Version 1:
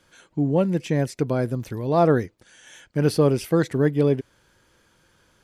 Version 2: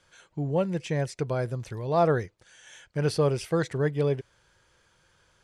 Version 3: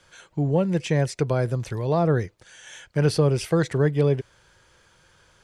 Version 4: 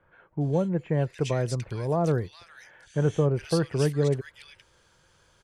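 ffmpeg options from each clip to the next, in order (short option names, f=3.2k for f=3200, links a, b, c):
-af "lowpass=f=9.8k:w=0.5412,lowpass=f=9.8k:w=1.3066,equalizer=f=260:w=1.8:g=-11,volume=-2.5dB"
-filter_complex "[0:a]acrossover=split=330[a][b];[b]acompressor=threshold=-28dB:ratio=10[c];[a][c]amix=inputs=2:normalize=0,volume=6.5dB"
-filter_complex "[0:a]acrossover=split=1900[a][b];[b]adelay=410[c];[a][c]amix=inputs=2:normalize=0,volume=-3.5dB"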